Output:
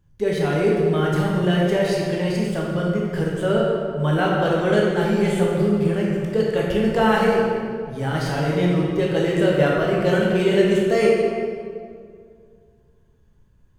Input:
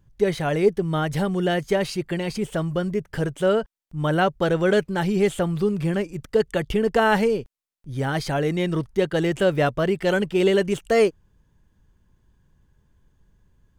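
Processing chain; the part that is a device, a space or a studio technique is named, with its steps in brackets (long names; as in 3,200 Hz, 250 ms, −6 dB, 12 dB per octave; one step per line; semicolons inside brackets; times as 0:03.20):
stairwell (convolution reverb RT60 2.1 s, pre-delay 12 ms, DRR −4 dB)
level −3.5 dB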